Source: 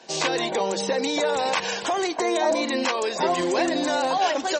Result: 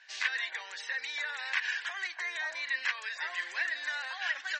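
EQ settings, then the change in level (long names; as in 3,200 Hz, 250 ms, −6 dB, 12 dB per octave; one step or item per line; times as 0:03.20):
four-pole ladder band-pass 1,900 Hz, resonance 70%
high-shelf EQ 2,400 Hz +8 dB
0.0 dB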